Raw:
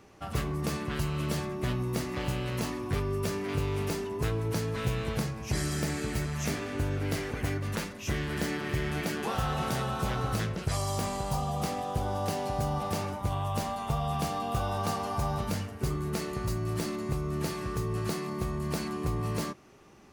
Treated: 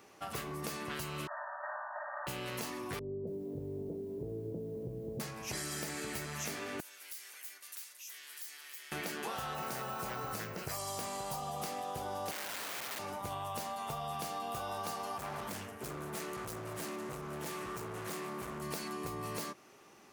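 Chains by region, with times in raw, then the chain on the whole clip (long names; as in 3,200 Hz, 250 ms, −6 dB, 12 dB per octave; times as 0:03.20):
0:01.27–0:02.27: lower of the sound and its delayed copy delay 3.2 ms + linear-phase brick-wall band-pass 560–1,900 Hz + flutter between parallel walls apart 9.8 metres, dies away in 1.3 s
0:02.99–0:05.20: linear delta modulator 64 kbit/s, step −45.5 dBFS + inverse Chebyshev low-pass filter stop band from 1,300 Hz, stop band 50 dB + feedback echo at a low word length 279 ms, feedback 35%, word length 10 bits, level −12 dB
0:06.80–0:08.92: high-pass filter 660 Hz 6 dB per octave + first difference + downward compressor 3 to 1, threshold −48 dBFS
0:09.55–0:10.79: parametric band 3,500 Hz −8 dB 0.4 octaves + bad sample-rate conversion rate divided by 2×, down none, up hold
0:12.31–0:12.99: phase distortion by the signal itself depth 0.15 ms + low-pass filter 2,100 Hz + wrap-around overflow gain 30 dB
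0:15.17–0:18.62: parametric band 4,500 Hz −6.5 dB 0.56 octaves + hard clipping −32 dBFS + highs frequency-modulated by the lows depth 0.24 ms
whole clip: high-pass filter 460 Hz 6 dB per octave; high-shelf EQ 11,000 Hz +8 dB; downward compressor, threshold −36 dBFS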